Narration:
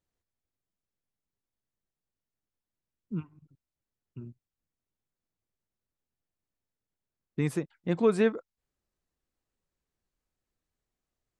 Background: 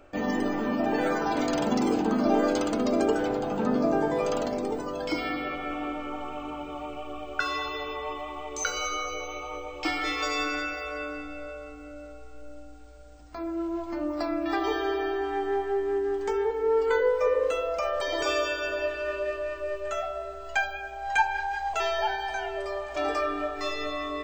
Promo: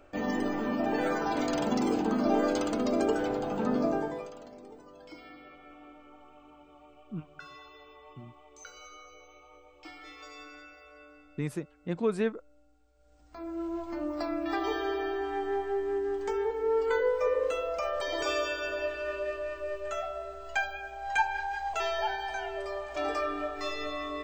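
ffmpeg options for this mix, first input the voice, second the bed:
-filter_complex "[0:a]adelay=4000,volume=0.596[s0];[1:a]volume=4.22,afade=t=out:st=3.84:d=0.47:silence=0.158489,afade=t=in:st=12.95:d=0.73:silence=0.16788[s1];[s0][s1]amix=inputs=2:normalize=0"

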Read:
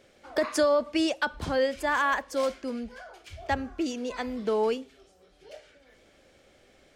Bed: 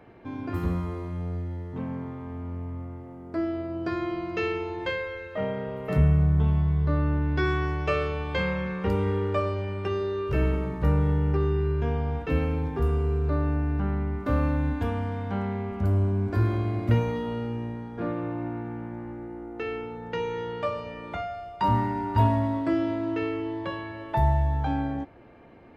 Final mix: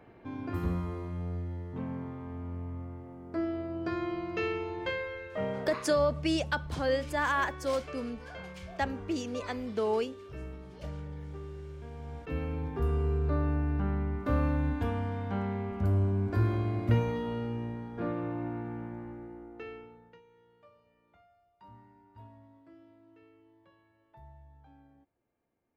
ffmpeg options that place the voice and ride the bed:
-filter_complex "[0:a]adelay=5300,volume=0.668[s0];[1:a]volume=3.35,afade=t=out:st=5.54:d=0.44:silence=0.199526,afade=t=in:st=11.91:d=1.14:silence=0.188365,afade=t=out:st=18.8:d=1.41:silence=0.0421697[s1];[s0][s1]amix=inputs=2:normalize=0"

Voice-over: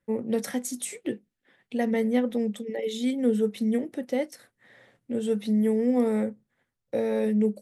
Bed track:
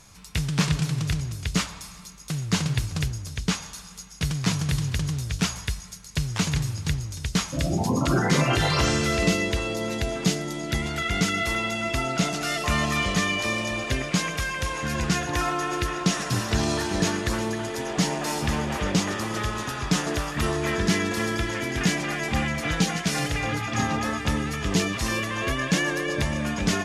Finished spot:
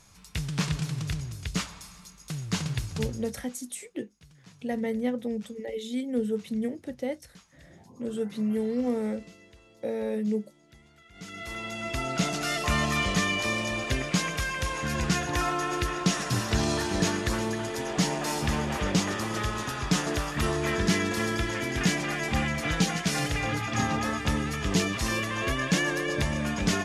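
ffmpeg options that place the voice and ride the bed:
-filter_complex "[0:a]adelay=2900,volume=0.596[s0];[1:a]volume=11.9,afade=t=out:st=3.09:d=0.39:silence=0.0668344,afade=t=in:st=11.13:d=1.21:silence=0.0446684[s1];[s0][s1]amix=inputs=2:normalize=0"

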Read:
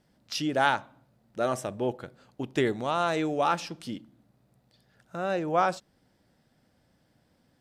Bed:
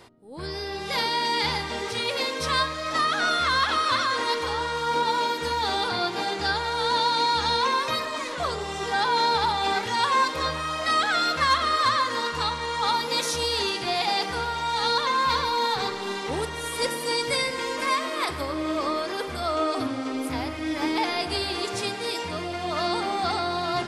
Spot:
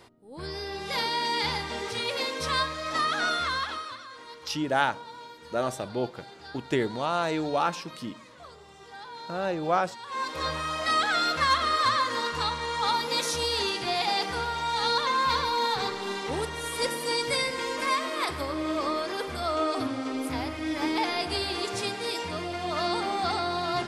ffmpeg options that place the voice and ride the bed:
-filter_complex "[0:a]adelay=4150,volume=0.944[s0];[1:a]volume=5.31,afade=t=out:st=3.26:d=0.71:silence=0.149624,afade=t=in:st=10.05:d=0.49:silence=0.133352[s1];[s0][s1]amix=inputs=2:normalize=0"

